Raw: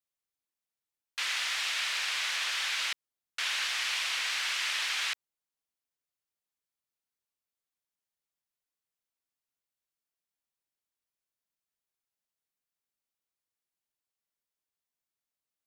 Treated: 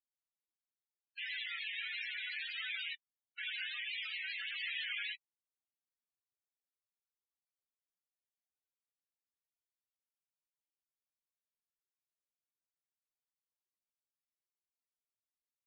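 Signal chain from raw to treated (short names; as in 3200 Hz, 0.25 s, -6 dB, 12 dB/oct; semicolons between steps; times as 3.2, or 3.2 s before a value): 4.63–5.08 G.711 law mismatch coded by mu; chorus 1.5 Hz, delay 16.5 ms, depth 3.3 ms; loudest bins only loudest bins 16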